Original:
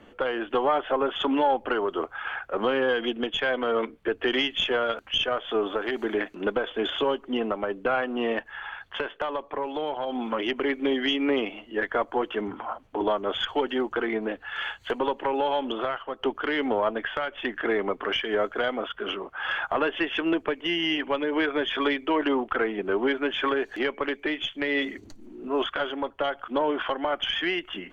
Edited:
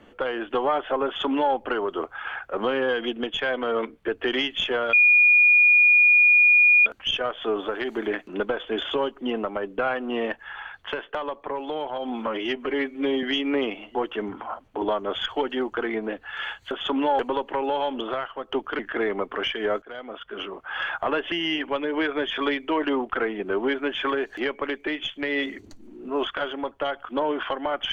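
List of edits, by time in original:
1.06–1.54 s: copy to 14.90 s
4.93 s: add tone 2.44 kHz -12.5 dBFS 1.93 s
10.34–10.98 s: stretch 1.5×
11.70–12.14 s: delete
16.50–17.48 s: delete
18.51–19.34 s: fade in, from -17 dB
20.01–20.71 s: delete

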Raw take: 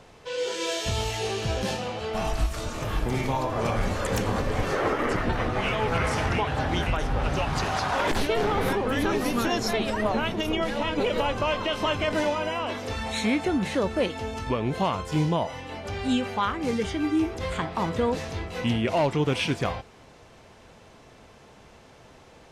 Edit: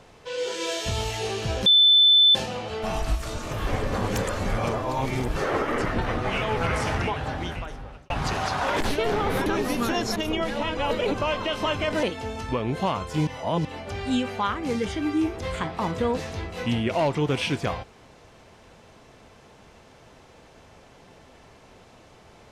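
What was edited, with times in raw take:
1.66 s: add tone 3.52 kHz -12.5 dBFS 0.69 s
2.98–4.67 s: reverse
6.23–7.41 s: fade out
8.77–9.02 s: delete
9.72–10.36 s: delete
10.97–11.34 s: reverse
12.23–14.01 s: delete
15.25–15.63 s: reverse

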